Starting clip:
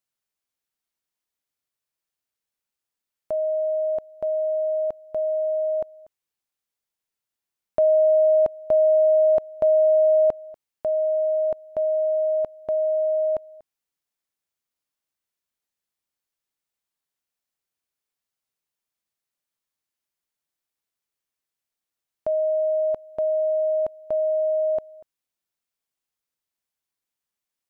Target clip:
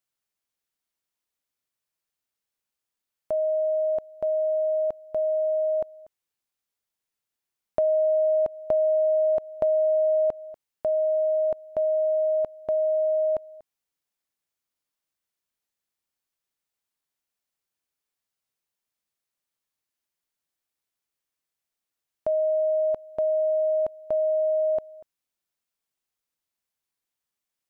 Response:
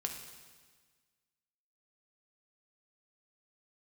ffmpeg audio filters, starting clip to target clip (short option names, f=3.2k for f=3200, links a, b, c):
-af "acompressor=threshold=-20dB:ratio=6"